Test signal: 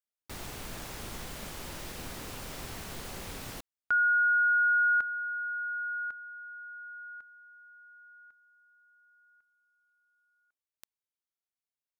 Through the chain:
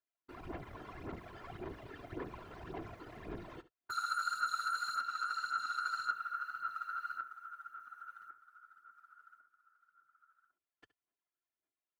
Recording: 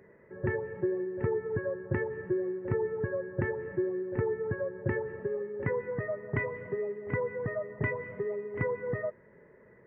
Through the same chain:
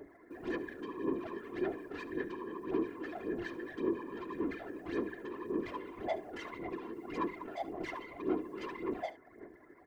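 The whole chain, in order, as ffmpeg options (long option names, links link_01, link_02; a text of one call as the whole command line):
ffmpeg -i in.wav -af "lowpass=2000,afftfilt=real='hypot(re,im)*cos(PI*b)':imag='0':win_size=512:overlap=0.75,equalizer=frequency=130:width=1.8:gain=9.5,acompressor=threshold=-33dB:ratio=8:attack=51:release=415:knee=1:detection=rms,acrusher=bits=8:mode=log:mix=0:aa=0.000001,aeval=exprs='(tanh(141*val(0)+0.1)-tanh(0.1))/141':channel_layout=same,aphaser=in_gain=1:out_gain=1:delay=2.3:decay=0.65:speed=1.8:type=sinusoidal,highpass=frequency=56:width=0.5412,highpass=frequency=56:width=1.3066,afftfilt=real='hypot(re,im)*cos(2*PI*random(0))':imag='hypot(re,im)*sin(2*PI*random(1))':win_size=512:overlap=0.75,aecho=1:1:70:0.15,volume=10dB" out.wav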